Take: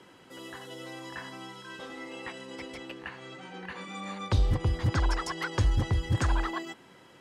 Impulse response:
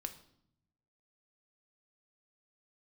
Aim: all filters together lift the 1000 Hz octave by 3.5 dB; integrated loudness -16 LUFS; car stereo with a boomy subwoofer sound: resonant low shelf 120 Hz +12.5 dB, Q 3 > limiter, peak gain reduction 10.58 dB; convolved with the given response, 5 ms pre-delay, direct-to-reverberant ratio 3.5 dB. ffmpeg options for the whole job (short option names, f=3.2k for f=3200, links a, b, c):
-filter_complex "[0:a]equalizer=f=1k:t=o:g=4.5,asplit=2[a][b];[1:a]atrim=start_sample=2205,adelay=5[c];[b][c]afir=irnorm=-1:irlink=0,volume=-1.5dB[d];[a][d]amix=inputs=2:normalize=0,lowshelf=f=120:t=q:w=3:g=12.5,volume=4.5dB,alimiter=limit=-5.5dB:level=0:latency=1"